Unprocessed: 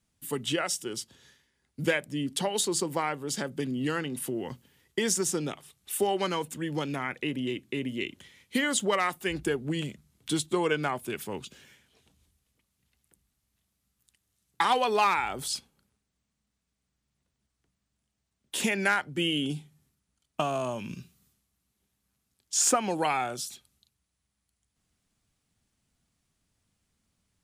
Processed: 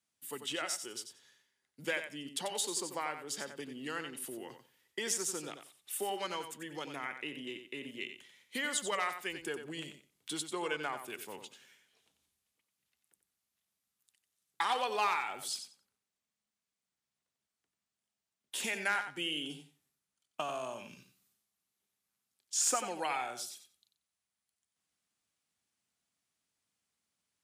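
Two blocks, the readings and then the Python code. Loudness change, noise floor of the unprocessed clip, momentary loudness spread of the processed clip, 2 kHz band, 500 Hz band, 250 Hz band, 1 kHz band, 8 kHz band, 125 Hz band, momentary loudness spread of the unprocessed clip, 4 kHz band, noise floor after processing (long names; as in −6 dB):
−7.5 dB, −81 dBFS, 15 LU, −6.0 dB, −10.0 dB, −13.5 dB, −7.0 dB, −5.5 dB, −18.0 dB, 12 LU, −5.5 dB, below −85 dBFS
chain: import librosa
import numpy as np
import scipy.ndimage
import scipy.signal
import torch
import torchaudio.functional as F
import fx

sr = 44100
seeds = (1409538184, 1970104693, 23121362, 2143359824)

y = fx.highpass(x, sr, hz=650.0, slope=6)
y = fx.echo_feedback(y, sr, ms=91, feedback_pct=17, wet_db=-9)
y = y * librosa.db_to_amplitude(-6.0)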